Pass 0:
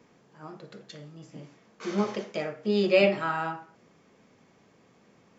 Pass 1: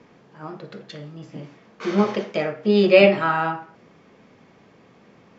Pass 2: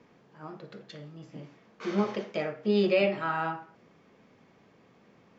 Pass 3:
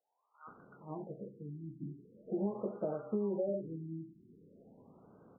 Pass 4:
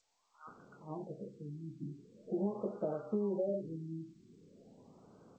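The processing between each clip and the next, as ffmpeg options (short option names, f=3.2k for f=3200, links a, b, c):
-af "lowpass=4.4k,volume=8dB"
-af "alimiter=limit=-7dB:level=0:latency=1:release=408,volume=-7.5dB"
-filter_complex "[0:a]acrossover=split=1200[a][b];[a]adelay=470[c];[c][b]amix=inputs=2:normalize=0,acompressor=threshold=-32dB:ratio=10,afftfilt=real='re*lt(b*sr/1024,370*pow(1600/370,0.5+0.5*sin(2*PI*0.43*pts/sr)))':imag='im*lt(b*sr/1024,370*pow(1600/370,0.5+0.5*sin(2*PI*0.43*pts/sr)))':win_size=1024:overlap=0.75,volume=1dB"
-ar 16000 -c:a g722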